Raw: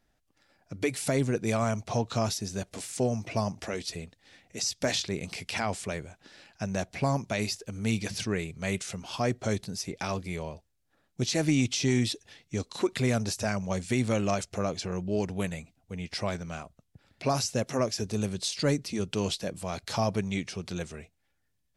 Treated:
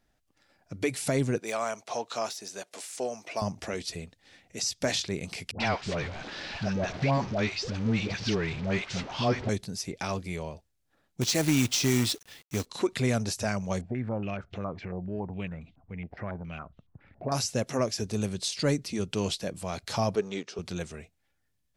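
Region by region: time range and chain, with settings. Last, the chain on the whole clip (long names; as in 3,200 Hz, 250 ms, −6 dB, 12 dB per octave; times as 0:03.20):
0:01.39–0:03.42: de-essing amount 75% + high-pass filter 490 Hz
0:05.51–0:09.49: converter with a step at zero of −33 dBFS + low-pass filter 5,100 Hz 24 dB per octave + all-pass dispersion highs, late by 92 ms, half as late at 750 Hz
0:11.21–0:12.66: high-shelf EQ 3,500 Hz +4.5 dB + log-companded quantiser 4 bits
0:13.81–0:17.32: low-shelf EQ 390 Hz +9 dB + downward compressor 1.5 to 1, threshold −51 dBFS + low-pass on a step sequencer 7.2 Hz 710–3,300 Hz
0:20.15–0:20.59: mu-law and A-law mismatch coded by A + loudspeaker in its box 250–7,100 Hz, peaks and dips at 420 Hz +9 dB, 1,300 Hz +4 dB, 2,200 Hz −6 dB
whole clip: no processing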